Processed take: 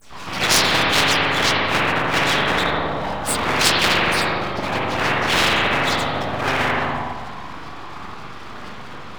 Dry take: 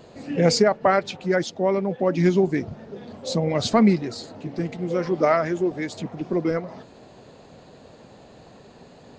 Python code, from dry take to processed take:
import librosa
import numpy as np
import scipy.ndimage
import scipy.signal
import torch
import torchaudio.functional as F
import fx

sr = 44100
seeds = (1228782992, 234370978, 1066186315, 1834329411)

y = fx.phase_scramble(x, sr, seeds[0], window_ms=50)
y = scipy.signal.sosfilt(scipy.signal.butter(2, 380.0, 'highpass', fs=sr, output='sos'), y)
y = fx.dereverb_blind(y, sr, rt60_s=0.77)
y = scipy.ndimage.gaussian_filter1d(y, 1.6, mode='constant')
y = fx.notch(y, sr, hz=960.0, q=11.0)
y = fx.pitch_keep_formants(y, sr, semitones=-4.5)
y = fx.dispersion(y, sr, late='lows', ms=130.0, hz=1300.0)
y = np.abs(y)
y = fx.rev_spring(y, sr, rt60_s=1.3, pass_ms=(41, 56), chirp_ms=45, drr_db=-2.5)
y = fx.spectral_comp(y, sr, ratio=10.0)
y = y * 10.0 ** (3.0 / 20.0)